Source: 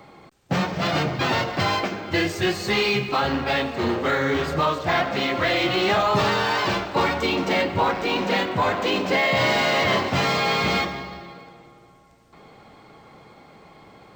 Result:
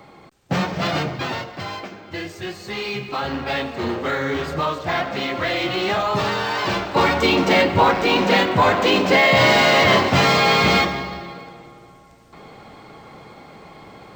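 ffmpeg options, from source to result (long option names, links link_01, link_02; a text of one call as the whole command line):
ffmpeg -i in.wav -af "volume=15.5dB,afade=type=out:start_time=0.83:duration=0.67:silence=0.334965,afade=type=in:start_time=2.67:duration=0.87:silence=0.446684,afade=type=in:start_time=6.54:duration=0.73:silence=0.446684" out.wav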